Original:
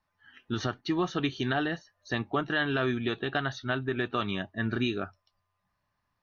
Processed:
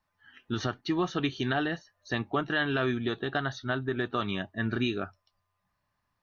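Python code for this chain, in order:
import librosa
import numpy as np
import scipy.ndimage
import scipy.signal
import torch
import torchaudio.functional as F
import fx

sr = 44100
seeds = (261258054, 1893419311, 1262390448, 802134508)

y = fx.peak_eq(x, sr, hz=2500.0, db=-7.5, octaves=0.41, at=(2.97, 4.23))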